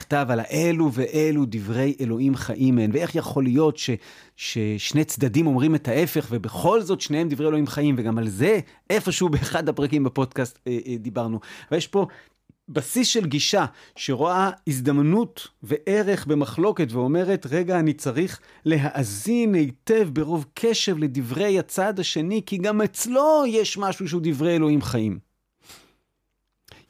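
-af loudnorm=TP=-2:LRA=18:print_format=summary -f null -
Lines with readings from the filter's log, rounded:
Input Integrated:    -22.9 LUFS
Input True Peak:      -7.6 dBTP
Input LRA:             4.3 LU
Input Threshold:     -33.3 LUFS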